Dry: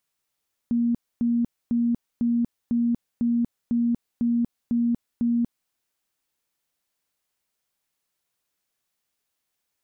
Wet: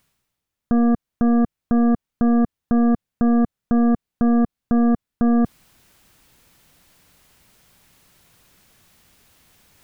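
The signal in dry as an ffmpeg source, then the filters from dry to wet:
-f lavfi -i "aevalsrc='0.112*sin(2*PI*236*mod(t,0.5))*lt(mod(t,0.5),56/236)':d=5:s=44100"
-af "bass=f=250:g=11,treble=f=4000:g=-4,areverse,acompressor=mode=upward:threshold=0.0251:ratio=2.5,areverse,aeval=exprs='0.282*(cos(1*acos(clip(val(0)/0.282,-1,1)))-cos(1*PI/2))+0.0708*(cos(2*acos(clip(val(0)/0.282,-1,1)))-cos(2*PI/2))+0.0501*(cos(5*acos(clip(val(0)/0.282,-1,1)))-cos(5*PI/2))+0.00178*(cos(6*acos(clip(val(0)/0.282,-1,1)))-cos(6*PI/2))+0.0447*(cos(7*acos(clip(val(0)/0.282,-1,1)))-cos(7*PI/2))':c=same"

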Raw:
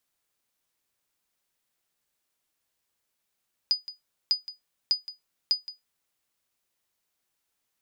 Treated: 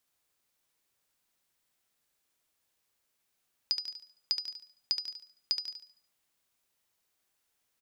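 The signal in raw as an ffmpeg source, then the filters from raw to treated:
-f lavfi -i "aevalsrc='0.188*(sin(2*PI*4950*mod(t,0.6))*exp(-6.91*mod(t,0.6)/0.16)+0.168*sin(2*PI*4950*max(mod(t,0.6)-0.17,0))*exp(-6.91*max(mod(t,0.6)-0.17,0)/0.16))':d=2.4:s=44100"
-filter_complex "[0:a]acompressor=threshold=0.0355:ratio=3,asplit=2[s0][s1];[s1]aecho=0:1:72|144|216|288|360:0.501|0.195|0.0762|0.0297|0.0116[s2];[s0][s2]amix=inputs=2:normalize=0"

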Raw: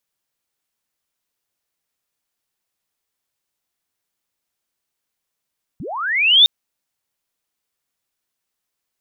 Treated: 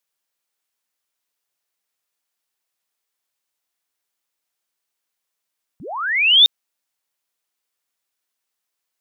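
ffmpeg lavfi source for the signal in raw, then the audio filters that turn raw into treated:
-f lavfi -i "aevalsrc='pow(10,(-28+22.5*t/0.66)/20)*sin(2*PI*(110*t+3590*t*t/(2*0.66)))':d=0.66:s=44100"
-af "lowshelf=f=260:g=-12"

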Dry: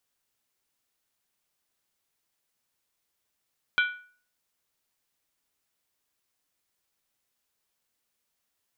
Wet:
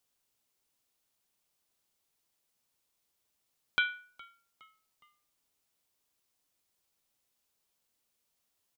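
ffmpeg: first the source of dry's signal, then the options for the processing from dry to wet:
-f lavfi -i "aevalsrc='0.126*pow(10,-3*t/0.45)*sin(2*PI*1470*t)+0.0708*pow(10,-3*t/0.356)*sin(2*PI*2343.2*t)+0.0398*pow(10,-3*t/0.308)*sin(2*PI*3139.9*t)+0.0224*pow(10,-3*t/0.297)*sin(2*PI*3375.1*t)+0.0126*pow(10,-3*t/0.276)*sin(2*PI*3899.9*t)':d=0.63:s=44100"
-filter_complex "[0:a]equalizer=f=1700:w=1.6:g=-4.5,asplit=4[s0][s1][s2][s3];[s1]adelay=414,afreqshift=-89,volume=0.0668[s4];[s2]adelay=828,afreqshift=-178,volume=0.0309[s5];[s3]adelay=1242,afreqshift=-267,volume=0.0141[s6];[s0][s4][s5][s6]amix=inputs=4:normalize=0"

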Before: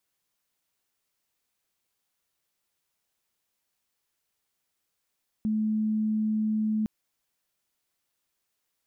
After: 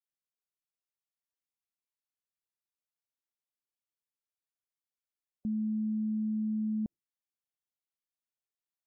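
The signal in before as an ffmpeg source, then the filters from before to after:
-f lavfi -i "sine=f=216:d=1.41:r=44100,volume=-5.44dB"
-af "afftdn=nr=21:nf=-49,alimiter=level_in=1.68:limit=0.0631:level=0:latency=1,volume=0.596"

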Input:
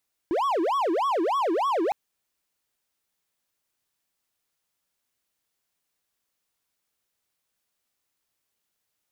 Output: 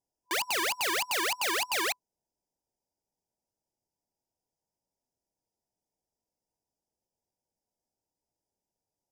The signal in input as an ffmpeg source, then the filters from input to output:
-f lavfi -i "aevalsrc='0.106*(1-4*abs(mod((724.5*t-405.5/(2*PI*3.3)*sin(2*PI*3.3*t))+0.25,1)-0.5))':d=1.61:s=44100"
-af "aemphasis=mode=reproduction:type=75kf,afftfilt=real='re*(1-between(b*sr/4096,1000,4700))':imag='im*(1-between(b*sr/4096,1000,4700))':win_size=4096:overlap=0.75,aeval=exprs='(mod(17.8*val(0)+1,2)-1)/17.8':c=same"

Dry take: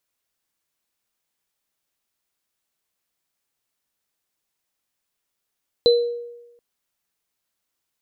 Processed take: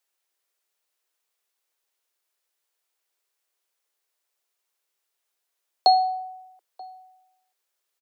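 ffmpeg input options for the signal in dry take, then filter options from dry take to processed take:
-f lavfi -i "aevalsrc='0.316*pow(10,-3*t/1.01)*sin(2*PI*476*t)+0.158*pow(10,-3*t/0.37)*sin(2*PI*4030*t)':d=0.73:s=44100"
-filter_complex "[0:a]highpass=67,afreqshift=270,asplit=2[s0][s1];[s1]adelay=932.9,volume=0.0708,highshelf=f=4000:g=-21[s2];[s0][s2]amix=inputs=2:normalize=0"

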